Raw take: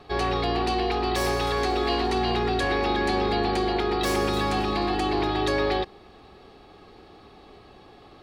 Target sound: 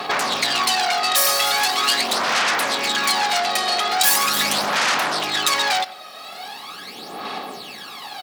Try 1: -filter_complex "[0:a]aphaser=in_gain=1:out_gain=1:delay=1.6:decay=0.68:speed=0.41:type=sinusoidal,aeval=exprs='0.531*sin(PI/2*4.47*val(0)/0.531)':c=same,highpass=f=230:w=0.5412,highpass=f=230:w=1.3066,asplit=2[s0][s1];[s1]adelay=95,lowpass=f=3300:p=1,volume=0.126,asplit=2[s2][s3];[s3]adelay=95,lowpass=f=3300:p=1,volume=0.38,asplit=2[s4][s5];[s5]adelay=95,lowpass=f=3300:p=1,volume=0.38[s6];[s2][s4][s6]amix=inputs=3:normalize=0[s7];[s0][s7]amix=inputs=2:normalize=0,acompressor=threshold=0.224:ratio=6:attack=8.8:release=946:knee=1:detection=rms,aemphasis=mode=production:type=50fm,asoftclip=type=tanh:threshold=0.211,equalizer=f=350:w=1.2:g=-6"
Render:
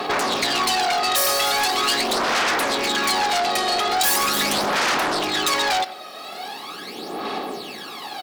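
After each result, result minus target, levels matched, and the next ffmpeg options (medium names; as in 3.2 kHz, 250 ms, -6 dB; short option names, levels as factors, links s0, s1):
saturation: distortion +14 dB; 250 Hz band +6.0 dB
-filter_complex "[0:a]aphaser=in_gain=1:out_gain=1:delay=1.6:decay=0.68:speed=0.41:type=sinusoidal,aeval=exprs='0.531*sin(PI/2*4.47*val(0)/0.531)':c=same,highpass=f=230:w=0.5412,highpass=f=230:w=1.3066,asplit=2[s0][s1];[s1]adelay=95,lowpass=f=3300:p=1,volume=0.126,asplit=2[s2][s3];[s3]adelay=95,lowpass=f=3300:p=1,volume=0.38,asplit=2[s4][s5];[s5]adelay=95,lowpass=f=3300:p=1,volume=0.38[s6];[s2][s4][s6]amix=inputs=3:normalize=0[s7];[s0][s7]amix=inputs=2:normalize=0,acompressor=threshold=0.224:ratio=6:attack=8.8:release=946:knee=1:detection=rms,aemphasis=mode=production:type=50fm,asoftclip=type=tanh:threshold=0.668,equalizer=f=350:w=1.2:g=-6"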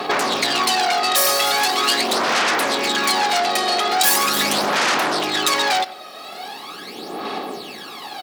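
250 Hz band +5.5 dB
-filter_complex "[0:a]aphaser=in_gain=1:out_gain=1:delay=1.6:decay=0.68:speed=0.41:type=sinusoidal,aeval=exprs='0.531*sin(PI/2*4.47*val(0)/0.531)':c=same,highpass=f=230:w=0.5412,highpass=f=230:w=1.3066,asplit=2[s0][s1];[s1]adelay=95,lowpass=f=3300:p=1,volume=0.126,asplit=2[s2][s3];[s3]adelay=95,lowpass=f=3300:p=1,volume=0.38,asplit=2[s4][s5];[s5]adelay=95,lowpass=f=3300:p=1,volume=0.38[s6];[s2][s4][s6]amix=inputs=3:normalize=0[s7];[s0][s7]amix=inputs=2:normalize=0,acompressor=threshold=0.224:ratio=6:attack=8.8:release=946:knee=1:detection=rms,aemphasis=mode=production:type=50fm,asoftclip=type=tanh:threshold=0.668,equalizer=f=350:w=1.2:g=-15"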